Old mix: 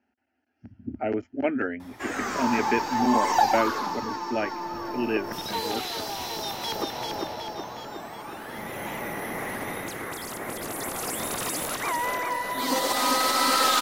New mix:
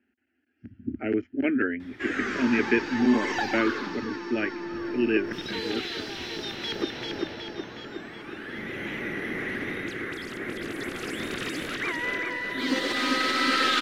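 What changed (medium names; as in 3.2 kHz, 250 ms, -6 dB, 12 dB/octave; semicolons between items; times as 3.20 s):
background: add treble shelf 11 kHz +4.5 dB; master: add FFT filter 160 Hz 0 dB, 360 Hz +5 dB, 660 Hz -10 dB, 950 Hz -13 dB, 1.6 kHz +4 dB, 3.2 kHz +2 dB, 14 kHz -25 dB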